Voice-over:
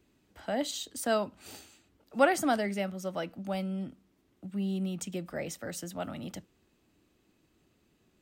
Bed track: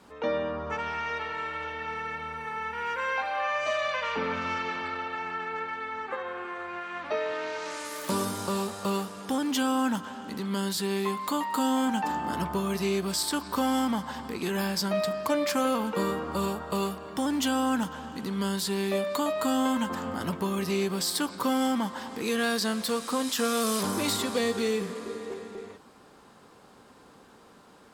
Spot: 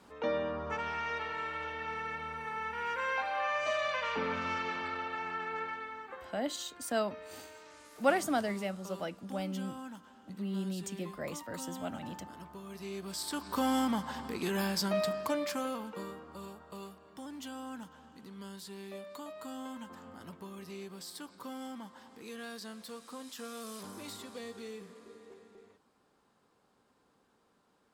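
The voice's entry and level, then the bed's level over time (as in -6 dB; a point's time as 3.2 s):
5.85 s, -3.5 dB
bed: 5.68 s -4 dB
6.47 s -18.5 dB
12.58 s -18.5 dB
13.66 s -3.5 dB
15.08 s -3.5 dB
16.27 s -17 dB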